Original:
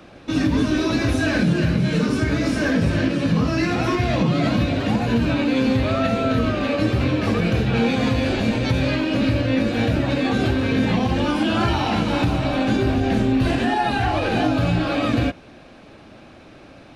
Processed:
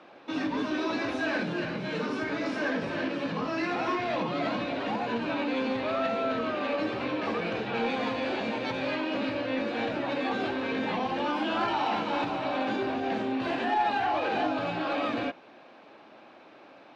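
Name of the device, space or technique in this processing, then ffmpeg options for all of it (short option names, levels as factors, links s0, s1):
intercom: -af "highpass=330,lowpass=4000,equalizer=f=920:t=o:w=0.59:g=5.5,asoftclip=type=tanh:threshold=0.237,volume=0.501"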